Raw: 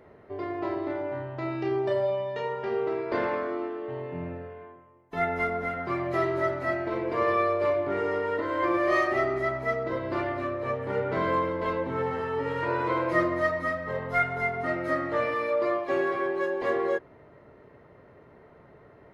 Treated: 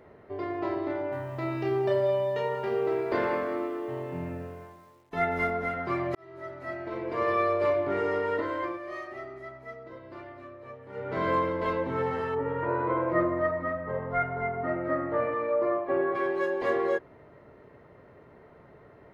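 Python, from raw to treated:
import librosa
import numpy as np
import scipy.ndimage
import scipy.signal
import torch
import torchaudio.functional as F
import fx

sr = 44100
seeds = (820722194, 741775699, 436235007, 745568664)

y = fx.echo_crushed(x, sr, ms=184, feedback_pct=35, bits=9, wet_db=-12.0, at=(0.94, 5.51))
y = fx.lowpass(y, sr, hz=1400.0, slope=12, at=(12.34, 16.14), fade=0.02)
y = fx.edit(y, sr, fx.fade_in_span(start_s=6.15, length_s=1.41),
    fx.fade_down_up(start_s=8.4, length_s=2.9, db=-14.5, fade_s=0.39), tone=tone)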